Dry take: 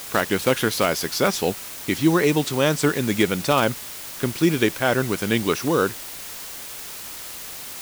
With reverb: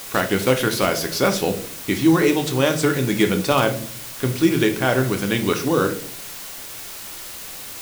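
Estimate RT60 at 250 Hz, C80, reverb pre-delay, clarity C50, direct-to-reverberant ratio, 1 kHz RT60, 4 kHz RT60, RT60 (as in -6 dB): 0.80 s, 16.5 dB, 3 ms, 12.0 dB, 5.5 dB, 0.45 s, 0.35 s, 0.50 s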